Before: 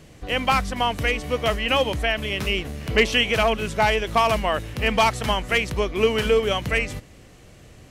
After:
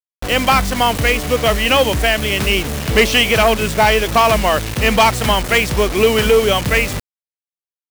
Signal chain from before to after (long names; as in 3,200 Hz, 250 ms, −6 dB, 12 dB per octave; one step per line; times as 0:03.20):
harmonic generator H 5 −19 dB, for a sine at −6.5 dBFS
bit reduction 5 bits
level +5 dB